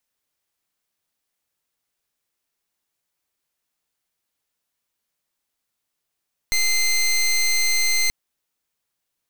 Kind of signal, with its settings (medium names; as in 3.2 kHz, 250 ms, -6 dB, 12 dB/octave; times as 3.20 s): pulse 2.08 kHz, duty 18% -19 dBFS 1.58 s